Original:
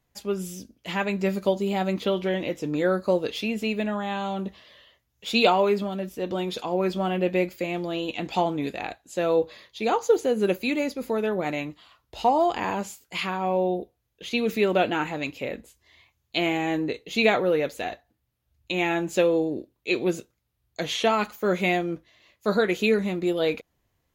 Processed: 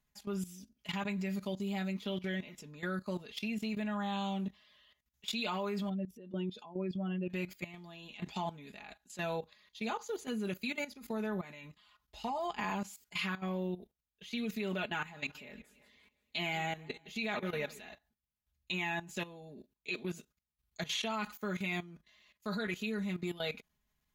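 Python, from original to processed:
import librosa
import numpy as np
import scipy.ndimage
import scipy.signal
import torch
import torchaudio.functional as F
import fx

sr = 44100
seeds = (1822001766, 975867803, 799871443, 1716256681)

y = fx.spec_expand(x, sr, power=1.6, at=(5.89, 7.3))
y = fx.echo_warbled(y, sr, ms=172, feedback_pct=50, rate_hz=2.8, cents=142, wet_db=-18, at=(14.95, 17.89))
y = fx.peak_eq(y, sr, hz=470.0, db=-10.5, octaves=1.2)
y = y + 0.86 * np.pad(y, (int(4.8 * sr / 1000.0), 0))[:len(y)]
y = fx.level_steps(y, sr, step_db=15)
y = F.gain(torch.from_numpy(y), -5.5).numpy()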